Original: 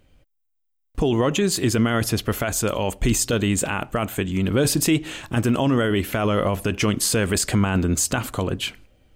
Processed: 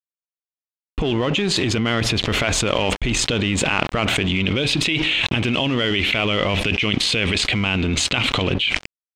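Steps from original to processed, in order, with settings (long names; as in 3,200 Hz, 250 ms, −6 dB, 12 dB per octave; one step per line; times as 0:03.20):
automatic gain control gain up to 12 dB
brickwall limiter −10.5 dBFS, peak gain reduction 8.5 dB
flat-topped bell 2,900 Hz +8.5 dB 1.2 octaves, from 0:04.28 +15.5 dB
dead-zone distortion −29.5 dBFS
high-frequency loss of the air 110 metres
envelope flattener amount 100%
level −13.5 dB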